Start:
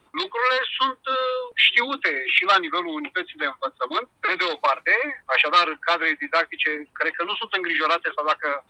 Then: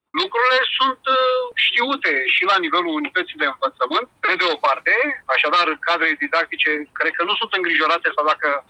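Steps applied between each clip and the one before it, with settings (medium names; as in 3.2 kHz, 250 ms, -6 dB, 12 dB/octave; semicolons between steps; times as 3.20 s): expander -45 dBFS; peak limiter -14.5 dBFS, peak gain reduction 11 dB; trim +7 dB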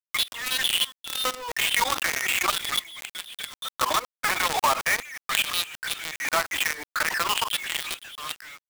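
LFO high-pass square 0.4 Hz 800–3200 Hz; companded quantiser 2-bit; swell ahead of each attack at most 65 dB/s; trim -16 dB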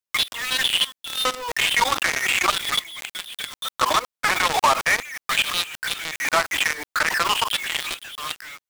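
slew-rate limiter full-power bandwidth 440 Hz; trim +4.5 dB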